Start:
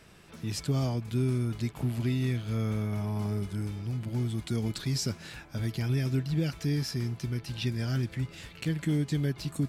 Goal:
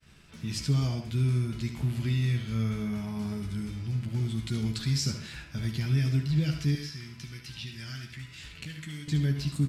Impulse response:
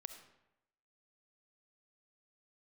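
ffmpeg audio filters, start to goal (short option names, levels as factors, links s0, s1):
-filter_complex "[0:a]equalizer=f=580:w=0.53:g=-12,aecho=1:1:14|72:0.422|0.316,asettb=1/sr,asplit=3[s0][s1][s2];[s0]atrim=end=6.754[s3];[s1]atrim=start=6.75:end=9.08,asetpts=PTS-STARTPTS,afade=t=in:d=0.004:c=qsin,afade=t=out:st=2.326:d=0.004:c=qsin,acrossover=split=1100|4300[s4][s5][s6];[s4]acompressor=threshold=0.00501:ratio=4[s7];[s5]acompressor=threshold=0.00501:ratio=4[s8];[s6]acompressor=threshold=0.00355:ratio=4[s9];[s7][s8][s9]amix=inputs=3:normalize=0[s10];[s2]atrim=start=9.076[s11];[s3][s10]acrossfade=d=0.004:c1=hsin:c2=qsin[s12];[s12][s11]acrossfade=d=0.004:c1=qsin:c2=hsin,highshelf=f=9000:g=-11.5,agate=range=0.0224:threshold=0.002:ratio=3:detection=peak[s13];[1:a]atrim=start_sample=2205,atrim=end_sample=6615[s14];[s13][s14]afir=irnorm=-1:irlink=0,volume=2.82"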